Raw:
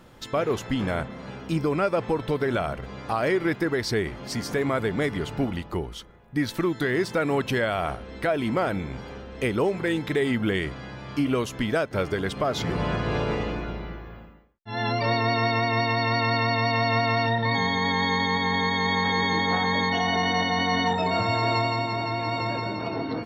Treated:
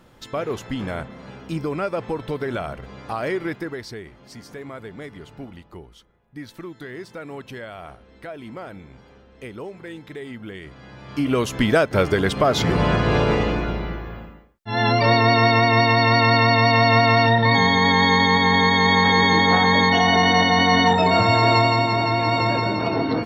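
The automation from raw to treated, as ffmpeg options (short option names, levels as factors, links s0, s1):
-af "volume=7.08,afade=t=out:st=3.37:d=0.61:silence=0.334965,afade=t=in:st=10.61:d=0.47:silence=0.334965,afade=t=in:st=11.08:d=0.54:silence=0.354813"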